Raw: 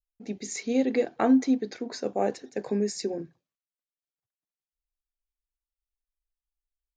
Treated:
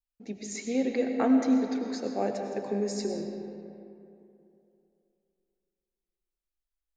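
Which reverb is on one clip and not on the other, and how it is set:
comb and all-pass reverb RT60 2.8 s, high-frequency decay 0.55×, pre-delay 60 ms, DRR 3.5 dB
level −3.5 dB

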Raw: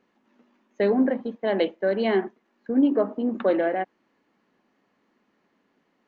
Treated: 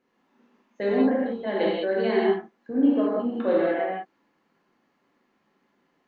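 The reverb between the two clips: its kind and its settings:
reverb whose tail is shaped and stops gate 220 ms flat, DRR −6.5 dB
level −7 dB

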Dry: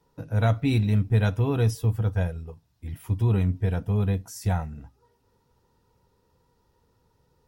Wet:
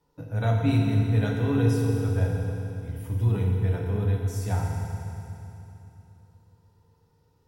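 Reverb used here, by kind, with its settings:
feedback delay network reverb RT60 3 s, low-frequency decay 1.25×, high-frequency decay 1×, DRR −1.5 dB
level −5 dB

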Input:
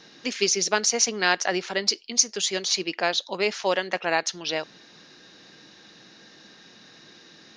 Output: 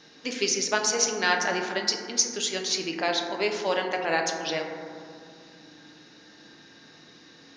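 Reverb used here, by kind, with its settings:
feedback delay network reverb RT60 2.3 s, low-frequency decay 1.55×, high-frequency decay 0.25×, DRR 1.5 dB
level −3.5 dB

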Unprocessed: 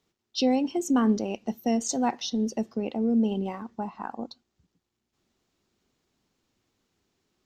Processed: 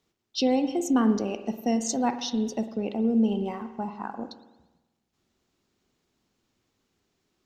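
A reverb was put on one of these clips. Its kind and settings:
spring reverb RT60 1.1 s, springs 49 ms, chirp 70 ms, DRR 9.5 dB

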